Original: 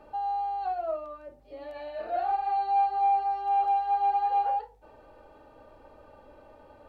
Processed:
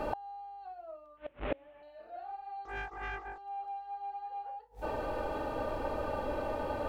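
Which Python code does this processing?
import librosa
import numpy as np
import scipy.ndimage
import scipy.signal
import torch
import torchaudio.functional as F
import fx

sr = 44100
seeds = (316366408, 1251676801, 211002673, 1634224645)

y = fx.delta_mod(x, sr, bps=16000, step_db=-46.5, at=(1.17, 1.83))
y = fx.gate_flip(y, sr, shuts_db=-36.0, range_db=-33)
y = fx.doppler_dist(y, sr, depth_ms=0.71, at=(2.65, 3.38))
y = y * 10.0 ** (17.5 / 20.0)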